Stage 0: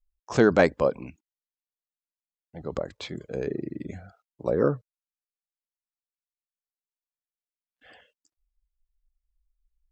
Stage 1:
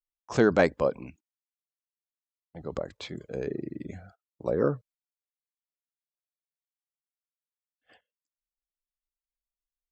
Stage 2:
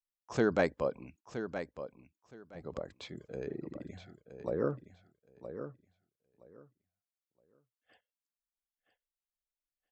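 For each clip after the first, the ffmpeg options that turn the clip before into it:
ffmpeg -i in.wav -af "agate=range=-23dB:threshold=-51dB:ratio=16:detection=peak,volume=-2.5dB" out.wav
ffmpeg -i in.wav -af "aecho=1:1:969|1938|2907:0.316|0.0601|0.0114,volume=-7dB" out.wav

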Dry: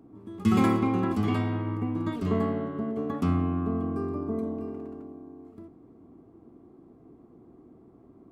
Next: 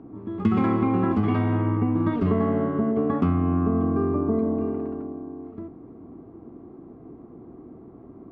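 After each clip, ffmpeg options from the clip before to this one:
ffmpeg -i in.wav -af "lowpass=2100,acompressor=threshold=-27dB:ratio=6,volume=9dB" out.wav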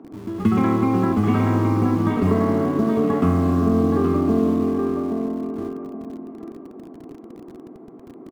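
ffmpeg -i in.wav -filter_complex "[0:a]acrossover=split=170[link_01][link_02];[link_01]acrusher=bits=7:mix=0:aa=0.000001[link_03];[link_02]aecho=1:1:822|1644|2466|3288:0.562|0.157|0.0441|0.0123[link_04];[link_03][link_04]amix=inputs=2:normalize=0,volume=3dB" out.wav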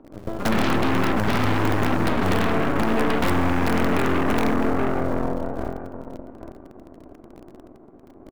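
ffmpeg -i in.wav -af "aeval=exprs='(mod(3.16*val(0)+1,2)-1)/3.16':channel_layout=same,aeval=exprs='0.335*(cos(1*acos(clip(val(0)/0.335,-1,1)))-cos(1*PI/2))+0.119*(cos(5*acos(clip(val(0)/0.335,-1,1)))-cos(5*PI/2))+0.0841*(cos(7*acos(clip(val(0)/0.335,-1,1)))-cos(7*PI/2))+0.15*(cos(8*acos(clip(val(0)/0.335,-1,1)))-cos(8*PI/2))':channel_layout=same,volume=-7dB" out.wav

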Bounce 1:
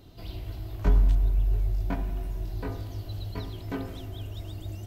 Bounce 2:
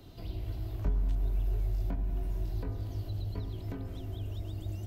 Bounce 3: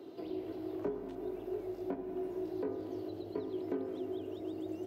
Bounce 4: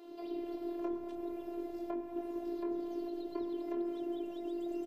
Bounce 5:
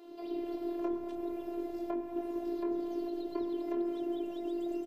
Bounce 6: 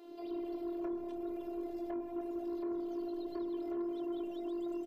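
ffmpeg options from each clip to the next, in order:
ffmpeg -i in.wav -filter_complex "[0:a]acrossover=split=140|640[link_01][link_02][link_03];[link_01]acompressor=threshold=-28dB:ratio=4[link_04];[link_02]acompressor=threshold=-43dB:ratio=4[link_05];[link_03]acompressor=threshold=-56dB:ratio=4[link_06];[link_04][link_05][link_06]amix=inputs=3:normalize=0" out.wav
ffmpeg -i in.wav -af "highpass=frequency=360:width_type=q:width=3.8,highshelf=frequency=2700:gain=-12,volume=2dB" out.wav
ffmpeg -i in.wav -filter_complex "[0:a]acrossover=split=380[link_01][link_02];[link_01]adelay=50[link_03];[link_03][link_02]amix=inputs=2:normalize=0,afftfilt=real='hypot(re,im)*cos(PI*b)':imag='0':win_size=512:overlap=0.75,volume=4.5dB" out.wav
ffmpeg -i in.wav -af "dynaudnorm=framelen=170:gausssize=3:maxgain=3dB" out.wav
ffmpeg -i in.wav -af "asoftclip=type=tanh:threshold=-31dB,volume=-1dB" out.wav

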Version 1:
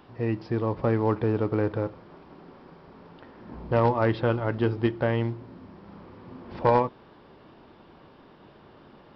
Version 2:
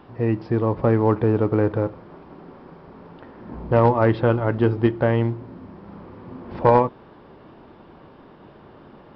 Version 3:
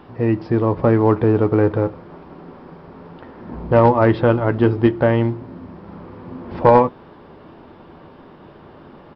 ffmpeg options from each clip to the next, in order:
ffmpeg -i in.wav -af "highshelf=frequency=3000:gain=-10.5,volume=6dB" out.wav
ffmpeg -i in.wav -filter_complex "[0:a]asplit=2[link_01][link_02];[link_02]adelay=12,volume=-12.5dB[link_03];[link_01][link_03]amix=inputs=2:normalize=0,volume=3.5dB" out.wav

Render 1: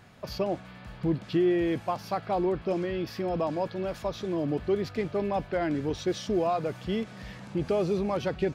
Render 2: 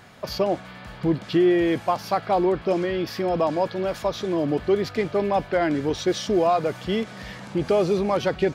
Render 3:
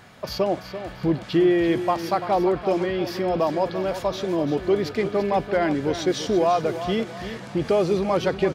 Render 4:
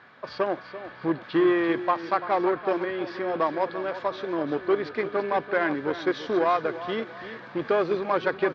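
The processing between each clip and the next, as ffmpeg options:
ffmpeg -i in.wav -af "lowshelf=frequency=240:gain=-7,bandreject=frequency=2600:width=24,volume=8dB" out.wav
ffmpeg -i in.wav -af "aecho=1:1:339|678|1017|1356:0.282|0.104|0.0386|0.0143" out.wav
ffmpeg -i in.wav -filter_complex "[0:a]asplit=2[link_01][link_02];[link_02]acrusher=bits=2:mix=0:aa=0.5,volume=-10dB[link_03];[link_01][link_03]amix=inputs=2:normalize=0,highpass=190,equalizer=frequency=190:width_type=q:width=4:gain=-7,equalizer=frequency=690:width_type=q:width=4:gain=-3,equalizer=frequency=1100:width_type=q:width=4:gain=5,equalizer=frequency=1600:width_type=q:width=4:gain=7,equalizer=frequency=2900:width_type=q:width=4:gain=-4,lowpass=frequency=4000:width=0.5412,lowpass=frequency=4000:width=1.3066,volume=-4.5dB" out.wav

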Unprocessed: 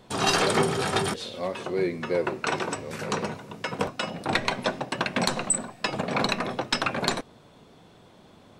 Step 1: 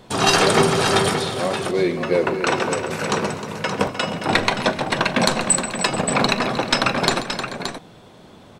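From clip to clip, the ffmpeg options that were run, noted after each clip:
ffmpeg -i in.wav -af "aecho=1:1:41|136|249|309|435|574:0.133|0.178|0.106|0.237|0.119|0.376,volume=6.5dB" out.wav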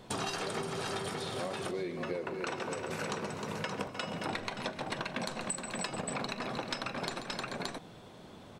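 ffmpeg -i in.wav -af "acompressor=threshold=-27dB:ratio=12,volume=-6dB" out.wav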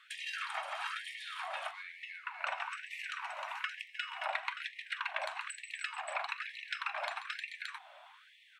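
ffmpeg -i in.wav -af "highshelf=frequency=3700:width_type=q:width=1.5:gain=-10.5,afftfilt=real='re*gte(b*sr/1024,550*pow(1800/550,0.5+0.5*sin(2*PI*1.1*pts/sr)))':imag='im*gte(b*sr/1024,550*pow(1800/550,0.5+0.5*sin(2*PI*1.1*pts/sr)))':win_size=1024:overlap=0.75,volume=1dB" out.wav

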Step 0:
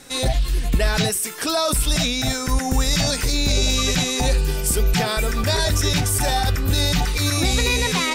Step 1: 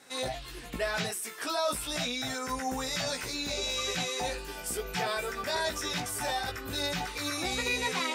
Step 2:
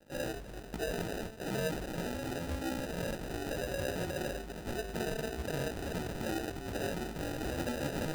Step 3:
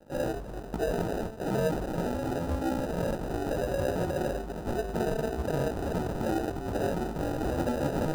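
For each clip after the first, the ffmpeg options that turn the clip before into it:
ffmpeg -i in.wav -af "highpass=frequency=870:poles=1,highshelf=frequency=2300:gain=-10.5,flanger=delay=15.5:depth=2.1:speed=0.37" out.wav
ffmpeg -i in.wav -filter_complex "[0:a]asplit=2[link_01][link_02];[link_02]alimiter=level_in=3dB:limit=-24dB:level=0:latency=1,volume=-3dB,volume=1dB[link_03];[link_01][link_03]amix=inputs=2:normalize=0,acrusher=samples=40:mix=1:aa=0.000001,aeval=exprs='sgn(val(0))*max(abs(val(0))-0.00158,0)':channel_layout=same,volume=-8dB" out.wav
ffmpeg -i in.wav -af "highshelf=frequency=1500:width_type=q:width=1.5:gain=-7.5,volume=6.5dB" out.wav

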